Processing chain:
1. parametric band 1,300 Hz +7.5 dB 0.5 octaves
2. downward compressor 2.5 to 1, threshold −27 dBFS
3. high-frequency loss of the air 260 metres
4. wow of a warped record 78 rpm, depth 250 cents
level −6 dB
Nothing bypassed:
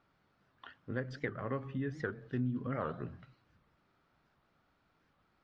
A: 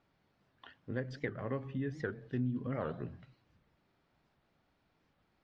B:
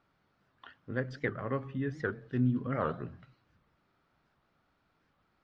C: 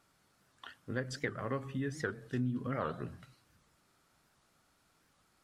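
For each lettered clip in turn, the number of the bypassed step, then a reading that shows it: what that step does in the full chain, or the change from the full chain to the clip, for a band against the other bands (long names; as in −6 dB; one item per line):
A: 1, 1 kHz band −3.5 dB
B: 2, change in momentary loudness spread −7 LU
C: 3, 4 kHz band +7.0 dB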